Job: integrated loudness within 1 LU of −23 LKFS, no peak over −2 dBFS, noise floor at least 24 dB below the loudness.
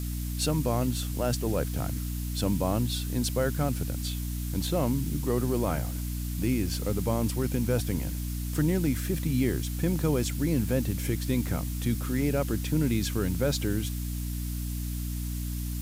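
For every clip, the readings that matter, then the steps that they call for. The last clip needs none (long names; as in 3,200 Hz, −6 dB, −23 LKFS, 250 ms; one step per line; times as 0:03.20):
mains hum 60 Hz; hum harmonics up to 300 Hz; level of the hum −30 dBFS; background noise floor −33 dBFS; target noise floor −53 dBFS; integrated loudness −29.0 LKFS; sample peak −13.5 dBFS; target loudness −23.0 LKFS
→ mains-hum notches 60/120/180/240/300 Hz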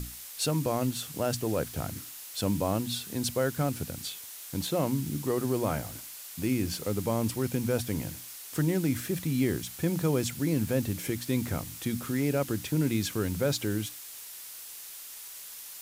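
mains hum none found; background noise floor −44 dBFS; target noise floor −55 dBFS
→ broadband denoise 11 dB, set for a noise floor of −44 dBFS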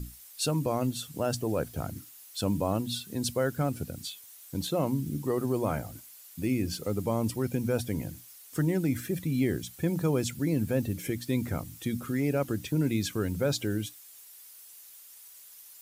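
background noise floor −51 dBFS; target noise floor −55 dBFS
→ broadband denoise 6 dB, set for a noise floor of −51 dBFS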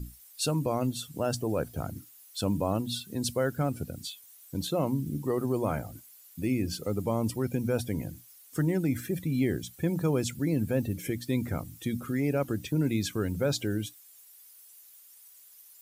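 background noise floor −55 dBFS; integrated loudness −31.0 LKFS; sample peak −15.5 dBFS; target loudness −23.0 LKFS
→ level +8 dB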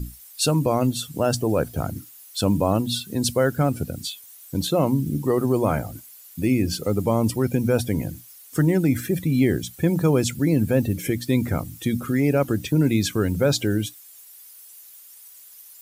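integrated loudness −23.0 LKFS; sample peak −7.5 dBFS; background noise floor −47 dBFS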